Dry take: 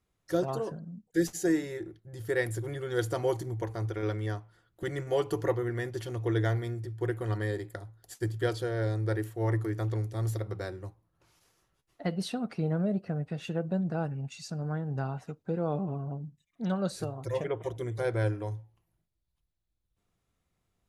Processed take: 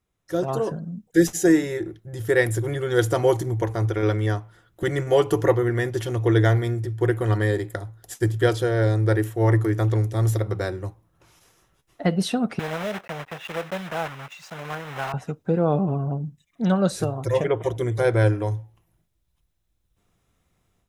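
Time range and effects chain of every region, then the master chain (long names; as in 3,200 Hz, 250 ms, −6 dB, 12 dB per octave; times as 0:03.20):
0:12.59–0:15.14: one scale factor per block 3 bits + three-way crossover with the lows and the highs turned down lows −16 dB, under 580 Hz, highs −14 dB, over 3,000 Hz
whole clip: automatic gain control gain up to 10 dB; notch filter 4,500 Hz, Q 9.6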